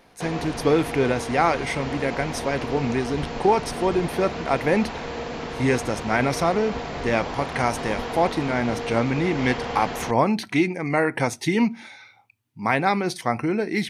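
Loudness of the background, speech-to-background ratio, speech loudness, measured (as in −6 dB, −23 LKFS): −31.5 LKFS, 7.5 dB, −24.0 LKFS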